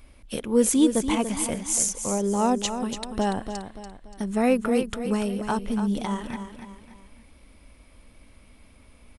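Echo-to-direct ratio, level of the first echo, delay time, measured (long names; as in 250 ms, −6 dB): −8.0 dB, −9.0 dB, 288 ms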